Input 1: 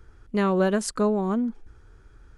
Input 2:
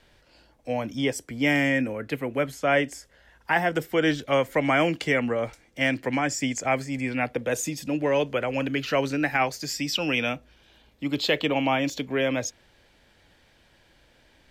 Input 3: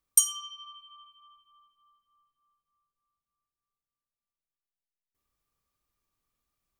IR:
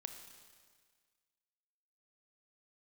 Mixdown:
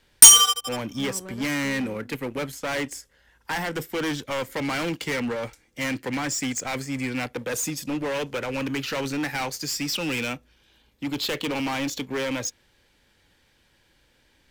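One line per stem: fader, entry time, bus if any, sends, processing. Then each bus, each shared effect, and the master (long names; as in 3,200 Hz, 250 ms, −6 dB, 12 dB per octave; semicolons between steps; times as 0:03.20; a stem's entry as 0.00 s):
−13.5 dB, 0.65 s, no send, automatic ducking −9 dB, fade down 1.65 s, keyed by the second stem
−2.0 dB, 0.00 s, no send, high-shelf EQ 6,200 Hz +7 dB; hard clipping −25.5 dBFS, distortion −7 dB
+2.0 dB, 0.05 s, no send, leveller curve on the samples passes 5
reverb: not used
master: leveller curve on the samples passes 1; parametric band 660 Hz −7.5 dB 0.3 octaves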